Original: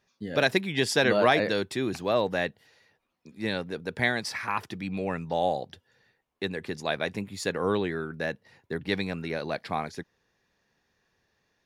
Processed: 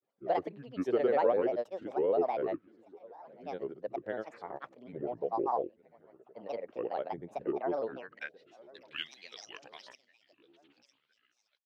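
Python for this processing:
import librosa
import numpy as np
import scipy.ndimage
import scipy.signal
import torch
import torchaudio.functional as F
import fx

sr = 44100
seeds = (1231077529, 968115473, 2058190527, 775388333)

y = fx.filter_sweep_bandpass(x, sr, from_hz=520.0, to_hz=3700.0, start_s=7.86, end_s=8.4, q=2.6)
y = fx.echo_feedback(y, sr, ms=960, feedback_pct=53, wet_db=-23.5)
y = fx.granulator(y, sr, seeds[0], grain_ms=100.0, per_s=20.0, spray_ms=100.0, spread_st=7)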